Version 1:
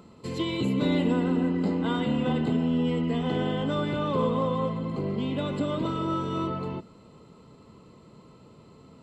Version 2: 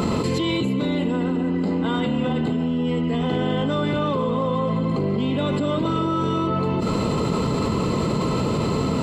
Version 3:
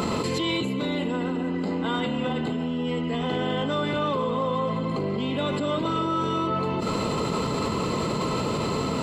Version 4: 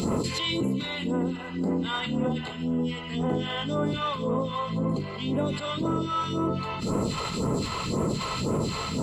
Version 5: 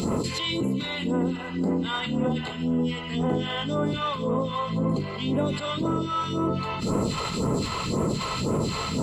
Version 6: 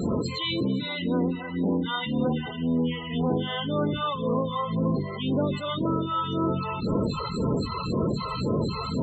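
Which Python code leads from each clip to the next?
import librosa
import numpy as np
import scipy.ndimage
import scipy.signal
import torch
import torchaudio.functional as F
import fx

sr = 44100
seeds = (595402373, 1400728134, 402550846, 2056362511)

y1 = fx.env_flatten(x, sr, amount_pct=100)
y2 = fx.low_shelf(y1, sr, hz=380.0, db=-7.5)
y3 = fx.phaser_stages(y2, sr, stages=2, low_hz=230.0, high_hz=3600.0, hz=1.9, feedback_pct=40)
y4 = fx.rider(y3, sr, range_db=10, speed_s=0.5)
y4 = y4 * librosa.db_to_amplitude(1.5)
y5 = fx.echo_wet_highpass(y4, sr, ms=251, feedback_pct=75, hz=4600.0, wet_db=-10.0)
y5 = fx.spec_topn(y5, sr, count=32)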